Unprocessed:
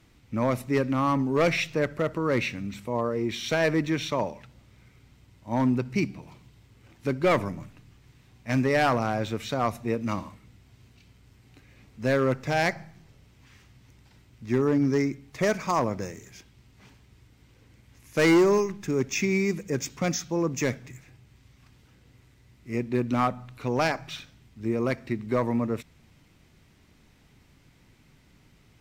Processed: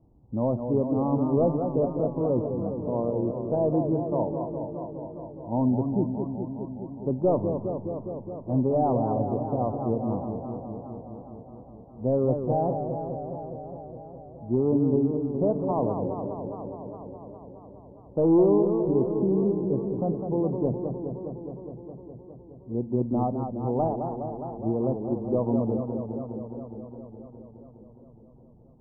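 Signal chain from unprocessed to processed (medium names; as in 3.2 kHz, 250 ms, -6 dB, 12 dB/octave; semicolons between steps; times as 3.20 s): steep low-pass 900 Hz 48 dB/octave; modulated delay 207 ms, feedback 78%, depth 149 cents, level -7 dB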